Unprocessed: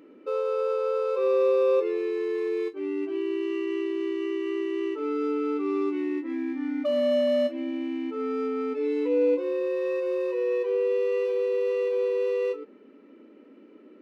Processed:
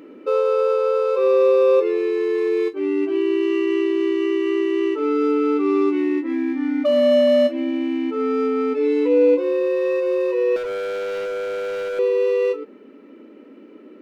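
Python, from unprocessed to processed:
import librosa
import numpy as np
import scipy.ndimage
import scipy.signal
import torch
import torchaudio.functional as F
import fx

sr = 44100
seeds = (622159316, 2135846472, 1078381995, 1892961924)

p1 = fx.rider(x, sr, range_db=10, speed_s=2.0)
p2 = x + F.gain(torch.from_numpy(p1), 2.5).numpy()
y = fx.overload_stage(p2, sr, gain_db=24.5, at=(10.56, 11.99))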